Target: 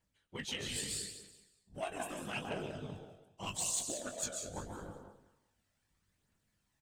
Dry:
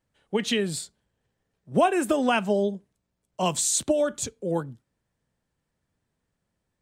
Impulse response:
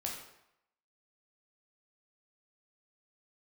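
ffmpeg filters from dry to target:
-filter_complex "[0:a]asplit=2[link_01][link_02];[1:a]atrim=start_sample=2205,lowshelf=frequency=180:gain=-11,adelay=142[link_03];[link_02][link_03]afir=irnorm=-1:irlink=0,volume=-5dB[link_04];[link_01][link_04]amix=inputs=2:normalize=0,afftfilt=real='hypot(re,im)*cos(2*PI*random(0))':imag='hypot(re,im)*sin(2*PI*random(1))':win_size=512:overlap=0.75,areverse,acompressor=threshold=-45dB:ratio=4,areverse,asplit=2[link_05][link_06];[link_06]adelay=20,volume=-6dB[link_07];[link_05][link_07]amix=inputs=2:normalize=0,aeval=exprs='0.0282*(cos(1*acos(clip(val(0)/0.0282,-1,1)))-cos(1*PI/2))+0.00316*(cos(3*acos(clip(val(0)/0.0282,-1,1)))-cos(3*PI/2))':channel_layout=same,lowshelf=frequency=290:gain=11,aecho=1:1:190|380|570:0.224|0.0694|0.0215,aphaser=in_gain=1:out_gain=1:delay=1.6:decay=0.33:speed=0.79:type=triangular,tiltshelf=frequency=920:gain=-8,volume=3dB"

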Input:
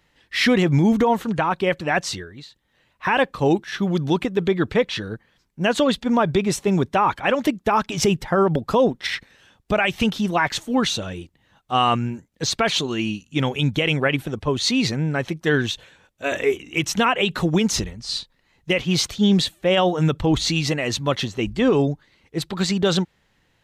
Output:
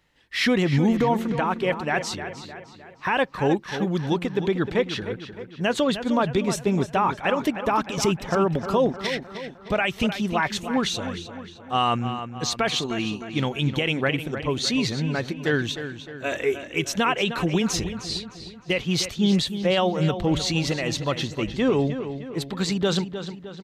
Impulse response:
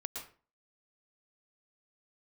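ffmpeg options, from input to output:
-filter_complex "[0:a]asplit=2[link_01][link_02];[link_02]adelay=307,lowpass=frequency=4500:poles=1,volume=-10dB,asplit=2[link_03][link_04];[link_04]adelay=307,lowpass=frequency=4500:poles=1,volume=0.51,asplit=2[link_05][link_06];[link_06]adelay=307,lowpass=frequency=4500:poles=1,volume=0.51,asplit=2[link_07][link_08];[link_08]adelay=307,lowpass=frequency=4500:poles=1,volume=0.51,asplit=2[link_09][link_10];[link_10]adelay=307,lowpass=frequency=4500:poles=1,volume=0.51,asplit=2[link_11][link_12];[link_12]adelay=307,lowpass=frequency=4500:poles=1,volume=0.51[link_13];[link_01][link_03][link_05][link_07][link_09][link_11][link_13]amix=inputs=7:normalize=0,volume=-3.5dB"

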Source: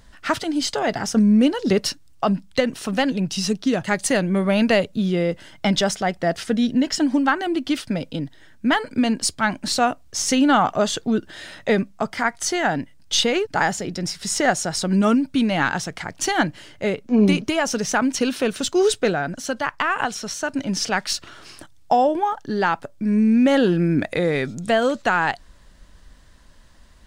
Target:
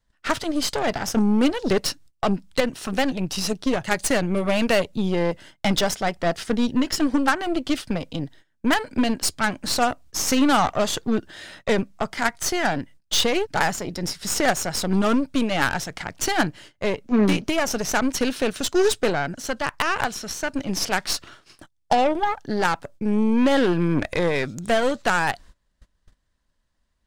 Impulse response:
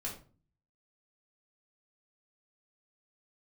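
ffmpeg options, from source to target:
-af "adynamicequalizer=threshold=0.02:dfrequency=210:dqfactor=4.1:tfrequency=210:tqfactor=4.1:attack=5:release=100:ratio=0.375:range=3:mode=cutabove:tftype=bell,aeval=exprs='0.531*(cos(1*acos(clip(val(0)/0.531,-1,1)))-cos(1*PI/2))+0.106*(cos(4*acos(clip(val(0)/0.531,-1,1)))-cos(4*PI/2))+0.168*(cos(6*acos(clip(val(0)/0.531,-1,1)))-cos(6*PI/2))+0.133*(cos(8*acos(clip(val(0)/0.531,-1,1)))-cos(8*PI/2))':channel_layout=same,agate=range=-20dB:threshold=-41dB:ratio=16:detection=peak,volume=-2dB"

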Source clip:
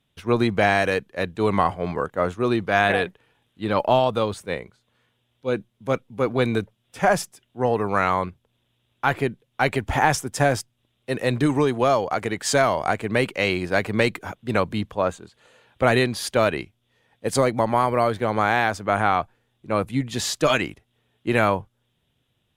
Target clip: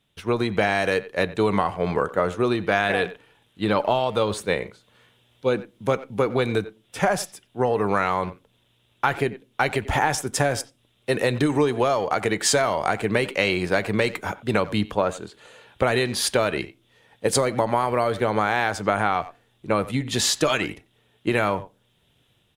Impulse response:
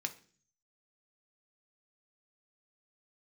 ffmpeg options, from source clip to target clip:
-filter_complex "[0:a]dynaudnorm=framelen=230:gausssize=5:maxgain=9.5dB,asplit=2[link_01][link_02];[link_02]adelay=90,highpass=300,lowpass=3400,asoftclip=type=hard:threshold=-9.5dB,volume=-19dB[link_03];[link_01][link_03]amix=inputs=2:normalize=0,acompressor=threshold=-19dB:ratio=6,asplit=2[link_04][link_05];[1:a]atrim=start_sample=2205,asetrate=70560,aresample=44100[link_06];[link_05][link_06]afir=irnorm=-1:irlink=0,volume=-2dB[link_07];[link_04][link_07]amix=inputs=2:normalize=0,volume=-1dB"

